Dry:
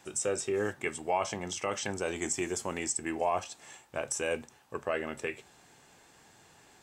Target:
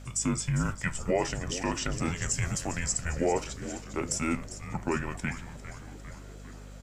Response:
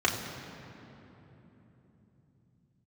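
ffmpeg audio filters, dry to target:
-filter_complex "[0:a]afreqshift=-250,asplit=8[link_01][link_02][link_03][link_04][link_05][link_06][link_07][link_08];[link_02]adelay=401,afreqshift=-140,volume=-12.5dB[link_09];[link_03]adelay=802,afreqshift=-280,volume=-16.5dB[link_10];[link_04]adelay=1203,afreqshift=-420,volume=-20.5dB[link_11];[link_05]adelay=1604,afreqshift=-560,volume=-24.5dB[link_12];[link_06]adelay=2005,afreqshift=-700,volume=-28.6dB[link_13];[link_07]adelay=2406,afreqshift=-840,volume=-32.6dB[link_14];[link_08]adelay=2807,afreqshift=-980,volume=-36.6dB[link_15];[link_01][link_09][link_10][link_11][link_12][link_13][link_14][link_15]amix=inputs=8:normalize=0,aeval=exprs='val(0)+0.00447*(sin(2*PI*50*n/s)+sin(2*PI*2*50*n/s)/2+sin(2*PI*3*50*n/s)/3+sin(2*PI*4*50*n/s)/4+sin(2*PI*5*50*n/s)/5)':channel_layout=same,volume=2.5dB"

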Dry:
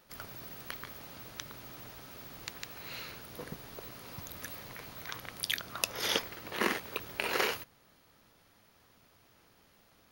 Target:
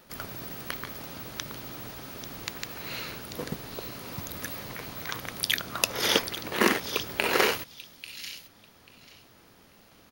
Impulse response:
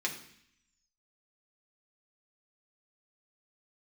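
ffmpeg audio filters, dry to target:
-filter_complex "[0:a]equalizer=frequency=250:width=0.77:gain=3.5,acrossover=split=3000[link_01][link_02];[link_01]acrusher=bits=4:mode=log:mix=0:aa=0.000001[link_03];[link_02]asplit=2[link_04][link_05];[link_05]adelay=840,lowpass=frequency=4400:poles=1,volume=-3.5dB,asplit=2[link_06][link_07];[link_07]adelay=840,lowpass=frequency=4400:poles=1,volume=0.24,asplit=2[link_08][link_09];[link_09]adelay=840,lowpass=frequency=4400:poles=1,volume=0.24[link_10];[link_04][link_06][link_08][link_10]amix=inputs=4:normalize=0[link_11];[link_03][link_11]amix=inputs=2:normalize=0,volume=6.5dB"

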